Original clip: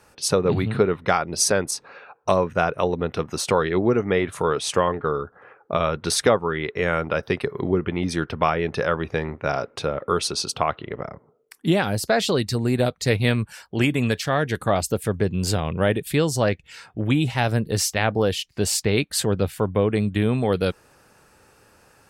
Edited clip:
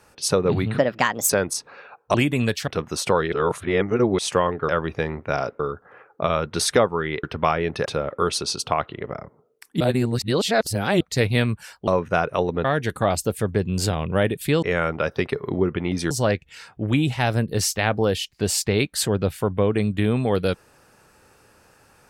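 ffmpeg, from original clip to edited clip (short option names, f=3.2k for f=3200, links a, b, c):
-filter_complex "[0:a]asplit=17[a][b][c][d][e][f][g][h][i][j][k][l][m][n][o][p][q];[a]atrim=end=0.784[r];[b]atrim=start=0.78:end=1.47,asetpts=PTS-STARTPTS,asetrate=59094,aresample=44100,atrim=end_sample=22708,asetpts=PTS-STARTPTS[s];[c]atrim=start=1.466:end=2.322[t];[d]atrim=start=13.768:end=14.302[u];[e]atrim=start=3.088:end=3.742[v];[f]atrim=start=3.738:end=4.602,asetpts=PTS-STARTPTS,areverse[w];[g]atrim=start=4.598:end=5.102[x];[h]atrim=start=8.838:end=9.752[y];[i]atrim=start=5.098:end=6.742[z];[j]atrim=start=8.218:end=8.842[aa];[k]atrim=start=9.748:end=11.702[ab];[l]atrim=start=11.698:end=12.902,asetpts=PTS-STARTPTS,areverse[ac];[m]atrim=start=12.898:end=13.772[ad];[n]atrim=start=2.318:end=3.092[ae];[o]atrim=start=14.298:end=16.282[af];[p]atrim=start=6.738:end=8.222[ag];[q]atrim=start=16.278[ah];[r][s]acrossfade=d=0.004:c1=hsin:c2=hsin[ai];[ai][t]acrossfade=d=0.004:c1=hsin:c2=hsin[aj];[aj][u]acrossfade=d=0.004:c1=hsin:c2=hsin[ak];[ak][v]acrossfade=d=0.004:c1=hsin:c2=hsin[al];[al][w]acrossfade=d=0.004:c1=hsin:c2=hsin[am];[am][x]acrossfade=d=0.004:c1=hsin:c2=hsin[an];[an][y]acrossfade=d=0.004:c1=hsin:c2=hsin[ao];[ao][z]acrossfade=d=0.004:c1=hsin:c2=hsin[ap];[ap][aa]acrossfade=d=0.004:c1=hsin:c2=hsin[aq];[aq][ab]acrossfade=d=0.004:c1=hsin:c2=hsin[ar];[ar][ac]acrossfade=d=0.004:c1=hsin:c2=hsin[as];[as][ad]acrossfade=d=0.004:c1=hsin:c2=hsin[at];[at][ae]acrossfade=d=0.004:c1=hsin:c2=hsin[au];[au][af]acrossfade=d=0.004:c1=hsin:c2=hsin[av];[av][ag]acrossfade=d=0.004:c1=hsin:c2=hsin[aw];[aw][ah]acrossfade=d=0.004:c1=hsin:c2=hsin"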